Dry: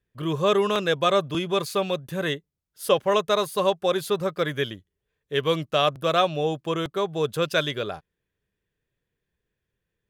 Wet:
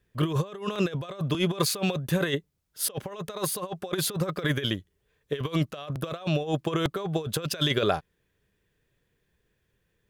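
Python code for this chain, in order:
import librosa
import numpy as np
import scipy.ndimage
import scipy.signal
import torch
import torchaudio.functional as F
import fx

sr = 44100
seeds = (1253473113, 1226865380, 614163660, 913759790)

y = fx.over_compress(x, sr, threshold_db=-29.0, ratio=-0.5)
y = y * 10.0 ** (2.0 / 20.0)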